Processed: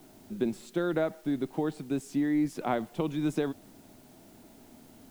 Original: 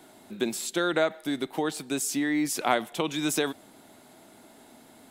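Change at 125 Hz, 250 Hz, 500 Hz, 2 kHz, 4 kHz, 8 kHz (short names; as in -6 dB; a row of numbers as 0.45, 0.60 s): +4.0, 0.0, -3.0, -10.0, -14.5, -18.0 dB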